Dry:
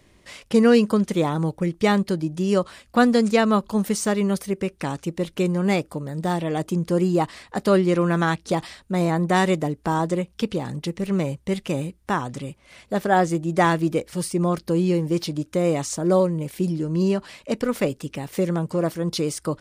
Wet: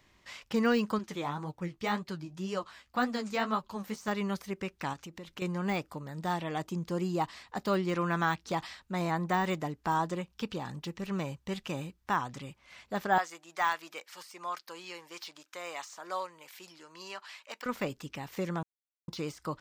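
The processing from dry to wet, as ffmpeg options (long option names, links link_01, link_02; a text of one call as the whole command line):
ffmpeg -i in.wav -filter_complex "[0:a]asettb=1/sr,asplit=3[link_01][link_02][link_03];[link_01]atrim=end=0.984[link_04];[link_02]atrim=start=0.98:end=4.08,asetpts=PTS-STARTPTS,afade=type=in:duration=0.004:curve=qsin,afade=type=out:start_time=3.096:duration=0.004:curve=qsin,flanger=delay=6.3:depth=9.6:regen=31:speed=1.9:shape=triangular[link_05];[link_03]atrim=start=4.076[link_06];[link_04][link_05]acrossfade=duration=0.004:curve1=hsin:curve2=qsin[link_07];[link_07][link_06]acrossfade=duration=0.004:curve1=qsin:curve2=hsin,asettb=1/sr,asplit=3[link_08][link_09][link_10];[link_08]atrim=end=4.934[link_11];[link_09]atrim=start=4.93:end=5.42,asetpts=PTS-STARTPTS,afade=type=in:duration=0.004:curve=qsin,afade=type=out:start_time=0.486:duration=0.004:curve=qsin,acompressor=threshold=-32dB:ratio=3:attack=3.2:release=140:knee=1:detection=peak[link_12];[link_10]atrim=start=5.416[link_13];[link_11][link_12]acrossfade=duration=0.004:curve1=hsin:curve2=qsin[link_14];[link_14][link_13]acrossfade=duration=0.004:curve1=qsin:curve2=hsin,asettb=1/sr,asplit=3[link_15][link_16][link_17];[link_15]atrim=end=6.664[link_18];[link_16]atrim=start=6.66:end=7.88,asetpts=PTS-STARTPTS,afade=type=in:duration=0.004:curve=qsin,afade=type=out:start_time=1.216:duration=0.004:curve=qsin,equalizer=frequency=1600:width=0.9:gain=-3.5[link_19];[link_17]atrim=start=7.876[link_20];[link_18][link_19]acrossfade=duration=0.004:curve1=hsin:curve2=qsin[link_21];[link_21][link_20]acrossfade=duration=0.004:curve1=qsin:curve2=hsin,asettb=1/sr,asplit=3[link_22][link_23][link_24];[link_22]atrim=end=9.934[link_25];[link_23]atrim=start=9.93:end=12.02,asetpts=PTS-STARTPTS,afade=type=in:duration=0.004:curve=qsin,afade=type=out:start_time=2.086:duration=0.004:curve=qsin,bandreject=frequency=2100:width=12[link_26];[link_24]atrim=start=12.016[link_27];[link_25][link_26]acrossfade=duration=0.004:curve1=hsin:curve2=qsin[link_28];[link_28][link_27]acrossfade=duration=0.004:curve1=qsin:curve2=hsin,asettb=1/sr,asplit=3[link_29][link_30][link_31];[link_29]atrim=end=13.184[link_32];[link_30]atrim=start=13.18:end=17.66,asetpts=PTS-STARTPTS,afade=type=in:duration=0.004:curve=qsin,afade=type=out:start_time=4.476:duration=0.004:curve=qsin,highpass=890[link_33];[link_31]atrim=start=17.656[link_34];[link_32][link_33]acrossfade=duration=0.004:curve1=hsin:curve2=qsin[link_35];[link_35][link_34]acrossfade=duration=0.004:curve1=qsin:curve2=hsin,asplit=3[link_36][link_37][link_38];[link_36]atrim=end=18.63,asetpts=PTS-STARTPTS,afade=type=out:start_time=18.626:duration=0.004:curve=hsin[link_39];[link_37]atrim=start=18.63:end=19.08,asetpts=PTS-STARTPTS,volume=0[link_40];[link_38]atrim=start=19.08,asetpts=PTS-STARTPTS,afade=type=in:duration=0.004:curve=hsin[link_41];[link_39][link_40][link_41]concat=n=3:v=0:a=1,lowshelf=frequency=700:width_type=q:width=1.5:gain=-6,deesser=0.75,equalizer=frequency=9600:width=3.2:gain=-14,volume=-5dB" out.wav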